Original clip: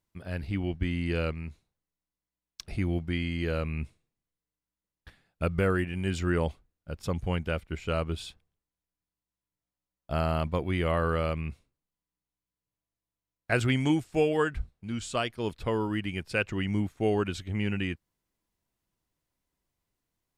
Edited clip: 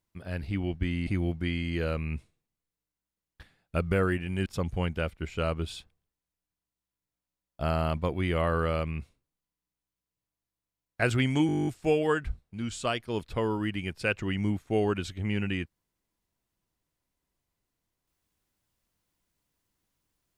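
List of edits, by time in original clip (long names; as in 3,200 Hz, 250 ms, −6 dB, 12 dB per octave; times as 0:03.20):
0:01.07–0:02.74: remove
0:06.13–0:06.96: remove
0:13.97: stutter 0.02 s, 11 plays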